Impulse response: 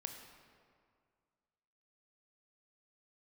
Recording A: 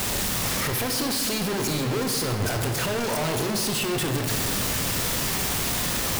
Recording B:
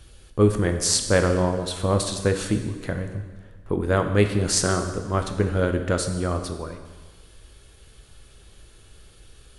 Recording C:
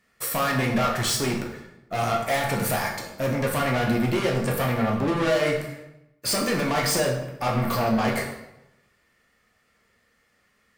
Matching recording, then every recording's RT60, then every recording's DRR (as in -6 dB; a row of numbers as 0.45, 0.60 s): A; 2.1, 1.4, 0.90 s; 4.0, 5.5, -0.5 dB